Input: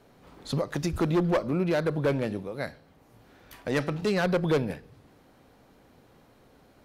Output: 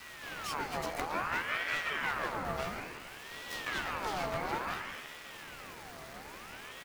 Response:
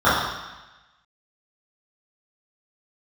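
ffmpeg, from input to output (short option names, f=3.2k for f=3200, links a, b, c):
-filter_complex "[0:a]bandreject=f=209.8:t=h:w=4,bandreject=f=419.6:t=h:w=4,bandreject=f=629.4:t=h:w=4,bandreject=f=839.2:t=h:w=4,bandreject=f=1.049k:t=h:w=4,bandreject=f=1.2588k:t=h:w=4,bandreject=f=1.4686k:t=h:w=4,bandreject=f=1.6784k:t=h:w=4,bandreject=f=1.8882k:t=h:w=4,bandreject=f=2.098k:t=h:w=4,bandreject=f=2.3078k:t=h:w=4,bandreject=f=2.5176k:t=h:w=4,bandreject=f=2.7274k:t=h:w=4,bandreject=f=2.9372k:t=h:w=4,bandreject=f=3.147k:t=h:w=4,bandreject=f=3.3568k:t=h:w=4,bandreject=f=3.5666k:t=h:w=4,bandreject=f=3.7764k:t=h:w=4,bandreject=f=3.9862k:t=h:w=4,bandreject=f=4.196k:t=h:w=4,bandreject=f=4.4058k:t=h:w=4,bandreject=f=4.6156k:t=h:w=4,bandreject=f=4.8254k:t=h:w=4,bandreject=f=5.0352k:t=h:w=4,bandreject=f=5.245k:t=h:w=4,bandreject=f=5.4548k:t=h:w=4,bandreject=f=5.6646k:t=h:w=4,bandreject=f=5.8744k:t=h:w=4,bandreject=f=6.0842k:t=h:w=4,bandreject=f=6.294k:t=h:w=4,bandreject=f=6.5038k:t=h:w=4,bandreject=f=6.7136k:t=h:w=4,bandreject=f=6.9234k:t=h:w=4,bandreject=f=7.1332k:t=h:w=4,bandreject=f=7.343k:t=h:w=4,bandreject=f=7.5528k:t=h:w=4,bandreject=f=7.7626k:t=h:w=4,bandreject=f=7.9724k:t=h:w=4,bandreject=f=8.1822k:t=h:w=4,acompressor=threshold=-40dB:ratio=3,asplit=2[a][b];[b]highpass=f=720:p=1,volume=23dB,asoftclip=type=tanh:threshold=-25dB[c];[a][c]amix=inputs=2:normalize=0,lowpass=f=5k:p=1,volume=-6dB,asplit=2[d][e];[e]asetrate=55563,aresample=44100,atempo=0.793701,volume=-5dB[f];[d][f]amix=inputs=2:normalize=0,acrusher=bits=5:dc=4:mix=0:aa=0.000001,asplit=2[g][h];[h]adelay=14,volume=-5.5dB[i];[g][i]amix=inputs=2:normalize=0,asplit=2[j][k];[1:a]atrim=start_sample=2205,adelay=135[l];[k][l]afir=irnorm=-1:irlink=0,volume=-26.5dB[m];[j][m]amix=inputs=2:normalize=0,aeval=exprs='val(0)*sin(2*PI*1300*n/s+1300*0.5/0.58*sin(2*PI*0.58*n/s))':c=same"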